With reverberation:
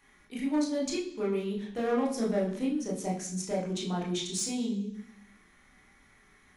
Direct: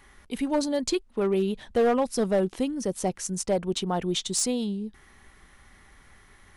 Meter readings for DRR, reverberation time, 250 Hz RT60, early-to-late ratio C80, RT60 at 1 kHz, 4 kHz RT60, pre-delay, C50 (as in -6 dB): -4.0 dB, 0.65 s, 0.95 s, 10.0 dB, 0.65 s, 0.95 s, 21 ms, 7.0 dB